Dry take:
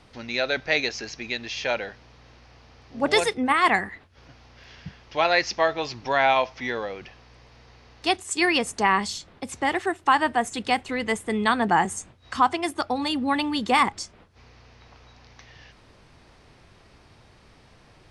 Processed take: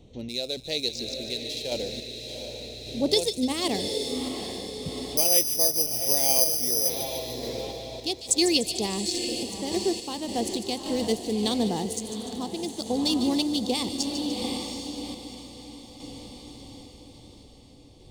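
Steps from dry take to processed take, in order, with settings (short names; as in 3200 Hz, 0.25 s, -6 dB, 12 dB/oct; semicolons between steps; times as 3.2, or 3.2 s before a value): Wiener smoothing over 9 samples; EQ curve 490 Hz 0 dB, 1500 Hz -28 dB, 4000 Hz +7 dB; on a send: diffused feedback echo 0.757 s, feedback 52%, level -7 dB; 5.17–6.9 on the sum: careless resampling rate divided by 8×, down filtered, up zero stuff; in parallel at -2.5 dB: compressor, threshold -32 dBFS, peak gain reduction 20 dB; on the sum: random-step tremolo; thin delay 0.148 s, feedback 55%, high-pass 3200 Hz, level -9 dB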